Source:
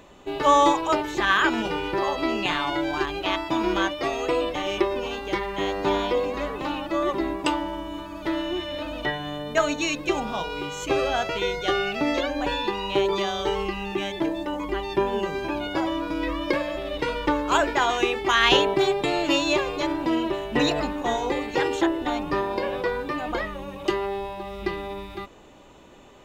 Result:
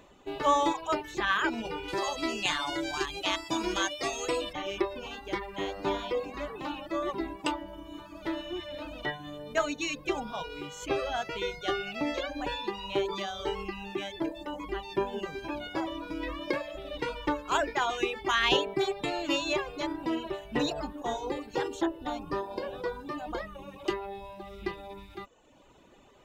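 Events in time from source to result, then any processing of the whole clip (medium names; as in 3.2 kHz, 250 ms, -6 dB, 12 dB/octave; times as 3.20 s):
1.88–4.53 s: peaking EQ 7.7 kHz +15 dB 1.7 oct
20.58–23.55 s: peaking EQ 2.2 kHz -7 dB
whole clip: reverb removal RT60 0.87 s; trim -6 dB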